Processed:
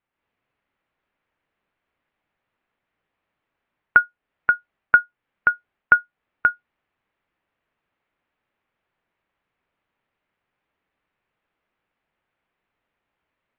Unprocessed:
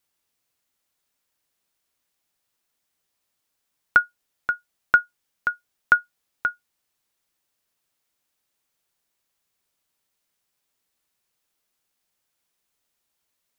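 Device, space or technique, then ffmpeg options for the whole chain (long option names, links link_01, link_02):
action camera in a waterproof case: -af "lowpass=frequency=2500:width=0.5412,lowpass=frequency=2500:width=1.3066,dynaudnorm=framelen=120:gausssize=3:maxgain=6.5dB" -ar 16000 -c:a aac -b:a 64k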